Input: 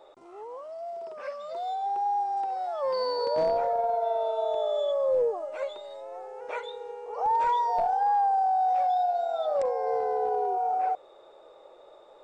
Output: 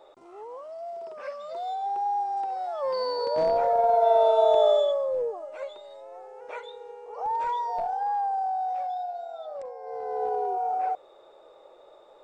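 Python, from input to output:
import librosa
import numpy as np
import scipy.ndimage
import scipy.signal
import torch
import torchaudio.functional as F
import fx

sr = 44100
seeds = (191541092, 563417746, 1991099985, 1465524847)

y = fx.gain(x, sr, db=fx.line((3.31, 0.0), (4.17, 8.5), (4.7, 8.5), (5.1, -3.5), (8.48, -3.5), (9.8, -12.0), (10.23, -0.5)))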